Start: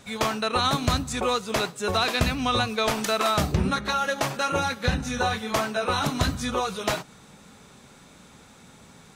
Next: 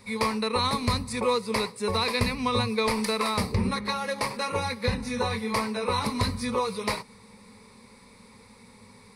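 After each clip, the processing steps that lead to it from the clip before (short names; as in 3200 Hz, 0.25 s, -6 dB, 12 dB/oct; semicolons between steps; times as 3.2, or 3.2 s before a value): ripple EQ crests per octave 0.91, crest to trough 14 dB; gain -4 dB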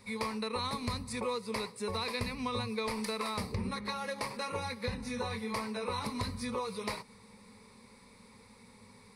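compressor 2:1, threshold -30 dBFS, peak gain reduction 6.5 dB; gain -5 dB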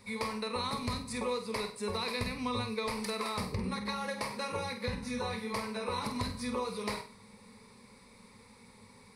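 flutter echo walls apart 8.3 m, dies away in 0.35 s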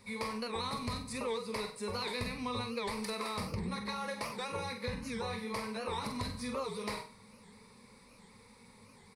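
doubler 42 ms -12 dB; in parallel at -9 dB: soft clip -31.5 dBFS, distortion -14 dB; on the sum: record warp 78 rpm, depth 160 cents; gain -4.5 dB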